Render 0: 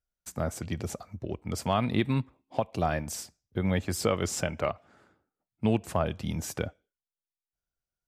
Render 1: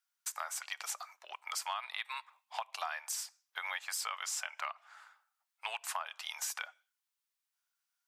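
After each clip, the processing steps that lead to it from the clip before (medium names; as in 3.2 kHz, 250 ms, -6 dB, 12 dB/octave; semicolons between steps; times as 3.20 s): steep high-pass 890 Hz 36 dB/octave; compression 6:1, threshold -43 dBFS, peak gain reduction 15.5 dB; trim +7.5 dB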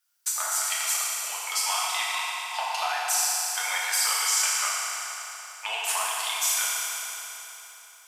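treble shelf 4 kHz +7.5 dB; FDN reverb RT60 3.6 s, high-frequency decay 0.9×, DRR -7 dB; trim +3 dB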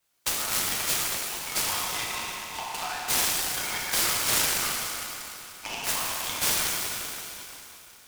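treble shelf 5.1 kHz +10.5 dB; delay time shaken by noise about 2.6 kHz, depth 0.041 ms; trim -6 dB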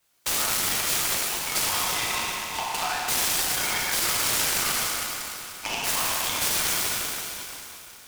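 peak limiter -20 dBFS, peak gain reduction 9 dB; trim +5 dB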